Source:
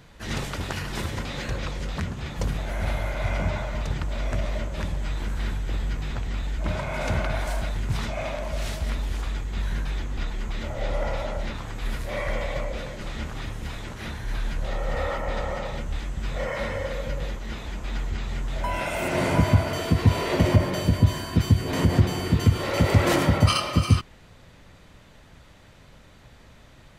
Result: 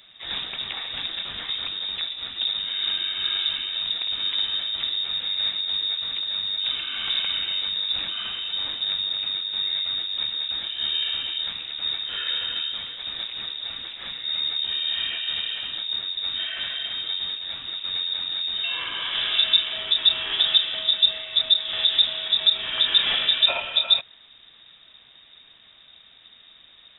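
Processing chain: 3.97–5.61 flutter echo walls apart 9.7 m, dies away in 0.53 s; inverted band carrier 3700 Hz; gain -2 dB

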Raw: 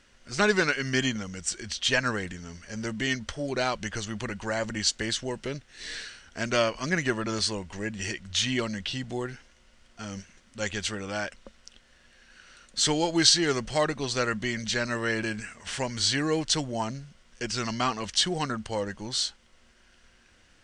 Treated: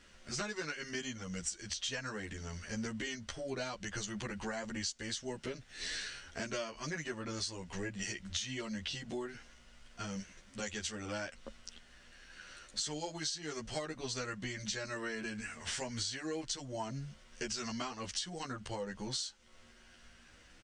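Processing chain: dynamic EQ 6400 Hz, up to +6 dB, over -43 dBFS, Q 1.3; compressor 10:1, threshold -36 dBFS, peak gain reduction 24 dB; endless flanger 11.5 ms +0.47 Hz; gain +3 dB

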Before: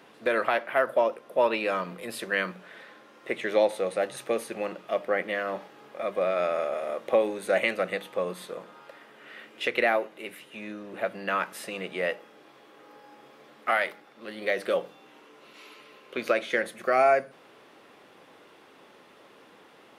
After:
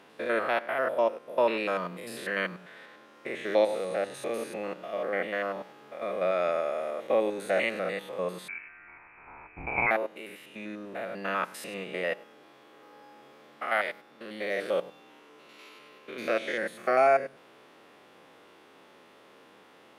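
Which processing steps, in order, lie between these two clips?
stepped spectrum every 0.1 s; 8.48–9.91 inverted band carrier 2800 Hz

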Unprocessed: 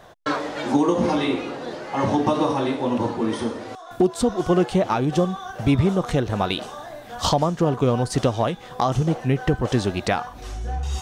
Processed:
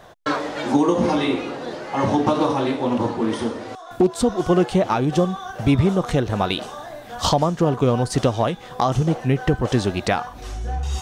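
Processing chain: 2.22–4.15 Doppler distortion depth 0.19 ms; gain +1.5 dB

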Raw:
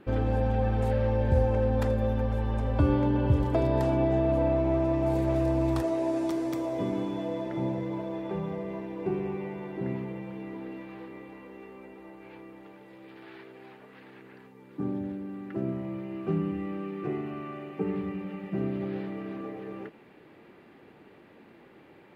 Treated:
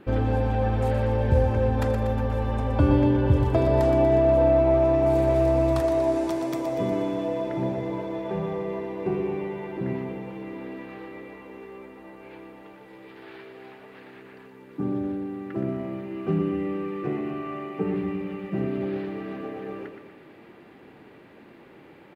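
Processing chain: feedback echo 0.12 s, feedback 59%, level -8 dB; gain +3.5 dB

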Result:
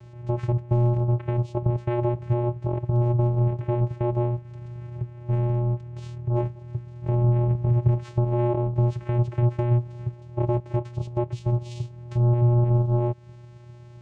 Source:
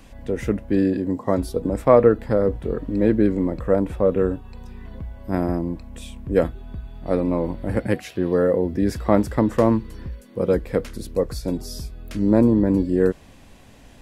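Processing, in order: 7.08–8.24 low shelf 410 Hz +11.5 dB; limiter -10.5 dBFS, peak gain reduction 10 dB; compressor 2:1, threshold -27 dBFS, peak gain reduction 7 dB; vocoder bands 4, square 120 Hz; gain +6 dB

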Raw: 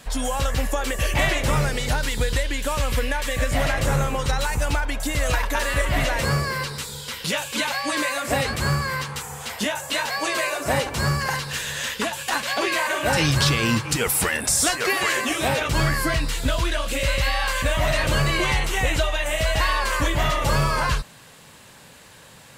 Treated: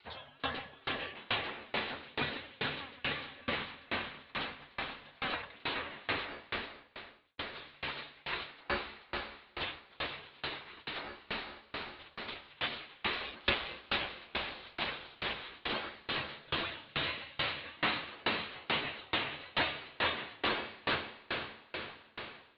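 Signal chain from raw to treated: 3.55–5.25 HPF 240 Hz 12 dB/oct; spectral gate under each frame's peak -15 dB weak; steep low-pass 4100 Hz 72 dB/oct; diffused feedback echo 0.455 s, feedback 68%, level -4.5 dB; 6.38–7.38 fade out; dB-ramp tremolo decaying 2.3 Hz, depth 30 dB

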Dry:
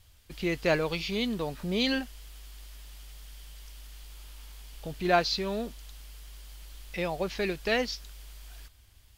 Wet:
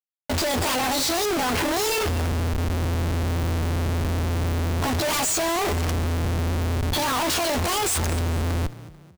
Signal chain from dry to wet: delay-line pitch shifter +9 st; HPF 420 Hz 6 dB/oct; high shelf 5500 Hz -5.5 dB; in parallel at -5.5 dB: sine folder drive 19 dB, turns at -10.5 dBFS; on the sum: low-pass opened by the level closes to 1900 Hz, open at -27.5 dBFS; Schmitt trigger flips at -35 dBFS; on a send: frequency-shifting echo 0.22 s, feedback 40%, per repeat +32 Hz, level -17 dB

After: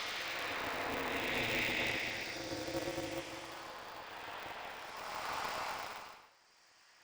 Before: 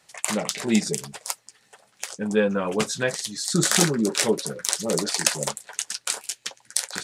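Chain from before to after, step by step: HPF 540 Hz 24 dB/oct; Paulstretch 7×, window 0.25 s, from 0.52; air absorption 330 m; polarity switched at an audio rate 100 Hz

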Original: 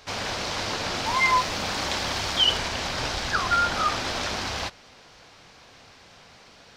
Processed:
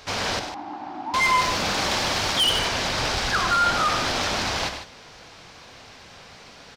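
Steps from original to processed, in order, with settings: 0.39–1.14 double band-pass 490 Hz, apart 1.4 oct; soft clip -21 dBFS, distortion -12 dB; loudspeakers at several distances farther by 33 m -9 dB, 52 m -11 dB; gain +4.5 dB

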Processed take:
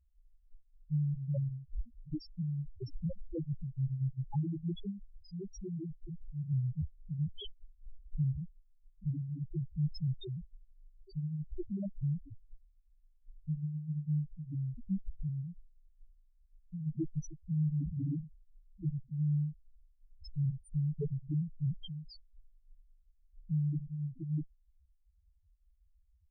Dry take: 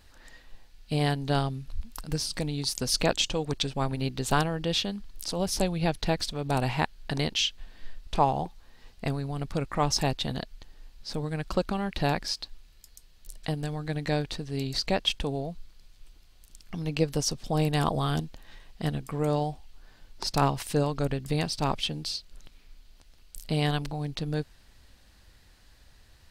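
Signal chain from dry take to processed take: added harmonics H 4 -13 dB, 5 -41 dB, 6 -23 dB, 8 -7 dB, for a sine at -9.5 dBFS; 5.29–6.18 level quantiser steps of 13 dB; loudest bins only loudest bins 1; gain -4 dB

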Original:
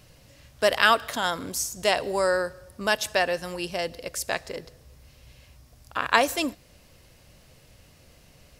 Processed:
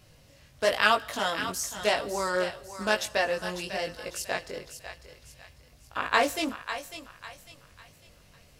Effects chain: chorus 1 Hz, delay 18.5 ms, depth 3.7 ms; on a send: thinning echo 0.549 s, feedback 38%, high-pass 700 Hz, level -9.5 dB; on the sum: Doppler distortion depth 0.15 ms

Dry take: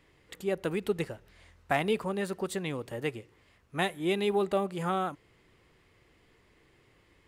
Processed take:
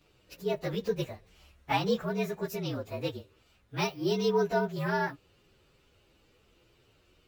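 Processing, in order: inharmonic rescaling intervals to 115%; gain +2.5 dB

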